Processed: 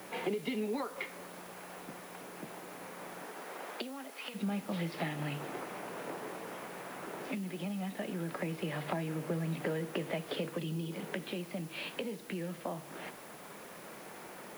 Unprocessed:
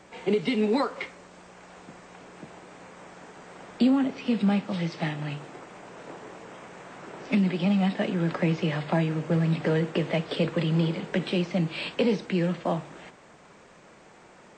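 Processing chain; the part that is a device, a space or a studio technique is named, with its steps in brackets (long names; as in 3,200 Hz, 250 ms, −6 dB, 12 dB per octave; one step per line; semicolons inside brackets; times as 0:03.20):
medium wave at night (band-pass filter 160–4,100 Hz; downward compressor, threshold −37 dBFS, peak gain reduction 17.5 dB; amplitude tremolo 0.21 Hz, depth 39%; steady tone 10,000 Hz −66 dBFS; white noise bed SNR 18 dB)
0:03.23–0:04.34: high-pass filter 210 Hz → 820 Hz 12 dB per octave
0:10.58–0:10.92: gain on a spectral selection 470–2,500 Hz −7 dB
level +4 dB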